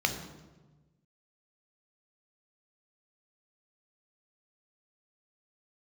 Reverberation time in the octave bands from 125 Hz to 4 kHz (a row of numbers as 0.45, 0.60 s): 1.7, 1.5, 1.3, 1.1, 0.90, 0.80 s